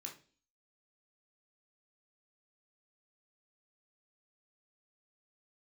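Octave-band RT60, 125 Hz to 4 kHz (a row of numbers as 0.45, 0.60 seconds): 0.45, 0.55, 0.45, 0.35, 0.40, 0.45 seconds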